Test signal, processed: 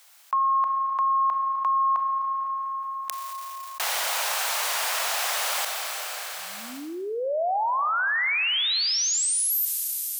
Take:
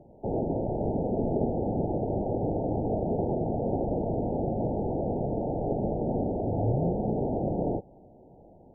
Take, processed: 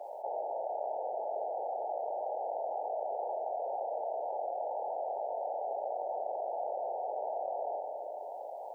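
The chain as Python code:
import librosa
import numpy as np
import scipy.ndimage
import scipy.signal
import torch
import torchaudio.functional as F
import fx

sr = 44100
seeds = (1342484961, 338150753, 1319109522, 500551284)

y = scipy.signal.sosfilt(scipy.signal.butter(6, 620.0, 'highpass', fs=sr, output='sos'), x)
y = fx.rev_schroeder(y, sr, rt60_s=2.3, comb_ms=28, drr_db=10.5)
y = fx.env_flatten(y, sr, amount_pct=70)
y = y * librosa.db_to_amplitude(-1.5)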